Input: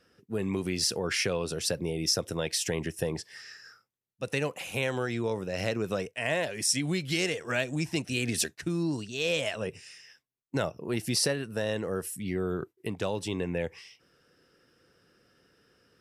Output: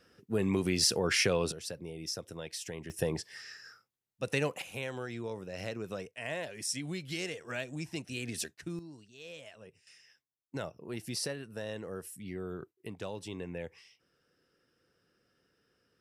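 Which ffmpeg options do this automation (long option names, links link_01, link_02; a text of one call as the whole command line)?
ffmpeg -i in.wav -af "asetnsamples=nb_out_samples=441:pad=0,asendcmd='1.52 volume volume -11dB;2.9 volume volume -1dB;4.62 volume volume -8.5dB;8.79 volume volume -19dB;9.87 volume volume -9dB',volume=1dB" out.wav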